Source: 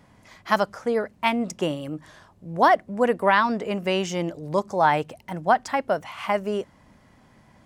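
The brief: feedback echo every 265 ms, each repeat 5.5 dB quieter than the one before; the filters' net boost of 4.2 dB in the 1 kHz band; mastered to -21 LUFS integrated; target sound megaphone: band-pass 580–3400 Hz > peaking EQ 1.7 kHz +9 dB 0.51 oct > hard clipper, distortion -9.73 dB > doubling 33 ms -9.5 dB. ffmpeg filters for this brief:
-filter_complex "[0:a]highpass=580,lowpass=3400,equalizer=f=1000:t=o:g=5,equalizer=f=1700:t=o:w=0.51:g=9,aecho=1:1:265|530|795|1060|1325|1590|1855:0.531|0.281|0.149|0.079|0.0419|0.0222|0.0118,asoftclip=type=hard:threshold=0.251,asplit=2[s0][s1];[s1]adelay=33,volume=0.335[s2];[s0][s2]amix=inputs=2:normalize=0"

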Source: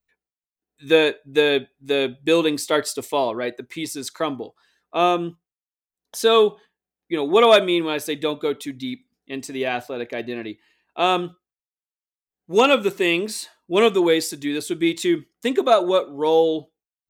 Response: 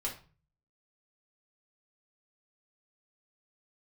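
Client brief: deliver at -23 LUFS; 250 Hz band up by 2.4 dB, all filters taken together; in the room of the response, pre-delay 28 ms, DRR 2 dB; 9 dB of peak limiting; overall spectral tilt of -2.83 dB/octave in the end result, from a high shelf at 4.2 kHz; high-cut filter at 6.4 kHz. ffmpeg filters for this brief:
-filter_complex "[0:a]lowpass=6400,equalizer=f=250:t=o:g=3.5,highshelf=f=4200:g=4.5,alimiter=limit=0.251:level=0:latency=1,asplit=2[s0][s1];[1:a]atrim=start_sample=2205,adelay=28[s2];[s1][s2]afir=irnorm=-1:irlink=0,volume=0.631[s3];[s0][s3]amix=inputs=2:normalize=0,volume=0.841"

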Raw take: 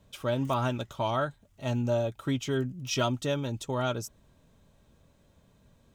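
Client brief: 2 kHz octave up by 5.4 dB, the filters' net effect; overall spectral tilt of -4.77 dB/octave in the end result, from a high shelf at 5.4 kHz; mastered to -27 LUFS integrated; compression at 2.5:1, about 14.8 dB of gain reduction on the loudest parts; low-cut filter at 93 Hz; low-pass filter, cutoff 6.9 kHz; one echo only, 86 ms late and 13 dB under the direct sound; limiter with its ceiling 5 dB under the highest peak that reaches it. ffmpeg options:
-af "highpass=93,lowpass=6900,equalizer=f=2000:t=o:g=7,highshelf=f=5400:g=5.5,acompressor=threshold=0.00501:ratio=2.5,alimiter=level_in=3.16:limit=0.0631:level=0:latency=1,volume=0.316,aecho=1:1:86:0.224,volume=7.5"

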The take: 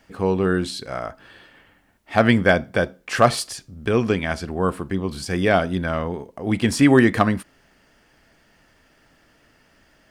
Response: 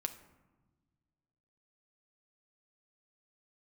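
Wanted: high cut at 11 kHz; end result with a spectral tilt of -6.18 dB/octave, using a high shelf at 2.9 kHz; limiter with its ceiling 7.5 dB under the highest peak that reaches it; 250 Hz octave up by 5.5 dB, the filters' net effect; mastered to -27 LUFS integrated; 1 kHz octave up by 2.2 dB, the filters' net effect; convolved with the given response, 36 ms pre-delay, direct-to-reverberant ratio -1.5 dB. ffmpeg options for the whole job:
-filter_complex "[0:a]lowpass=11000,equalizer=f=250:t=o:g=6.5,equalizer=f=1000:t=o:g=3.5,highshelf=f=2900:g=-5,alimiter=limit=0.447:level=0:latency=1,asplit=2[s0][s1];[1:a]atrim=start_sample=2205,adelay=36[s2];[s1][s2]afir=irnorm=-1:irlink=0,volume=1.19[s3];[s0][s3]amix=inputs=2:normalize=0,volume=0.316"

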